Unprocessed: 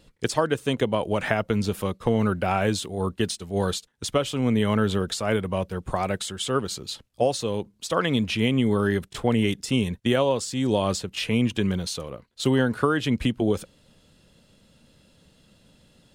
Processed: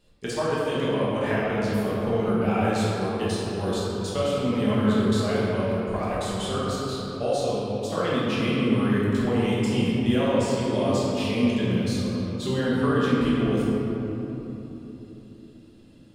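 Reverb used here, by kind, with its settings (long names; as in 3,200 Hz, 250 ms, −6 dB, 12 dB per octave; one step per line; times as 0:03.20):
rectangular room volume 210 cubic metres, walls hard, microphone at 1.3 metres
level −10 dB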